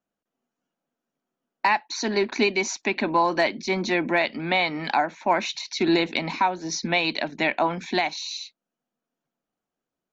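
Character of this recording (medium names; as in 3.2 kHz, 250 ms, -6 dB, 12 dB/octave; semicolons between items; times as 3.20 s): noise floor -88 dBFS; spectral tilt -3.5 dB/octave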